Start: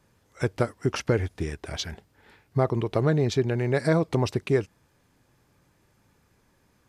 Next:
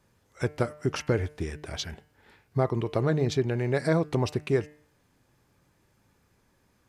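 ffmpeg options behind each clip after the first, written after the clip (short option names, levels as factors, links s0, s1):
-af "bandreject=f=150.1:t=h:w=4,bandreject=f=300.2:t=h:w=4,bandreject=f=450.3:t=h:w=4,bandreject=f=600.4:t=h:w=4,bandreject=f=750.5:t=h:w=4,bandreject=f=900.6:t=h:w=4,bandreject=f=1050.7:t=h:w=4,bandreject=f=1200.8:t=h:w=4,bandreject=f=1350.9:t=h:w=4,bandreject=f=1501:t=h:w=4,bandreject=f=1651.1:t=h:w=4,bandreject=f=1801.2:t=h:w=4,bandreject=f=1951.3:t=h:w=4,bandreject=f=2101.4:t=h:w=4,bandreject=f=2251.5:t=h:w=4,bandreject=f=2401.6:t=h:w=4,bandreject=f=2551.7:t=h:w=4,bandreject=f=2701.8:t=h:w=4,bandreject=f=2851.9:t=h:w=4,bandreject=f=3002:t=h:w=4,volume=0.794"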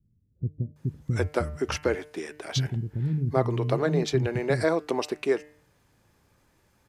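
-filter_complex "[0:a]acrossover=split=240[s0][s1];[s1]adelay=760[s2];[s0][s2]amix=inputs=2:normalize=0,volume=1.33"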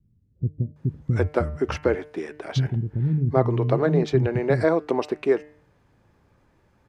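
-af "lowpass=f=1500:p=1,volume=1.68"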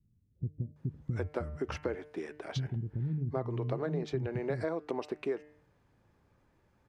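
-af "acompressor=threshold=0.0631:ratio=3,volume=0.422"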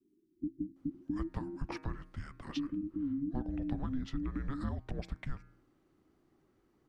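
-af "afreqshift=-420,volume=0.794"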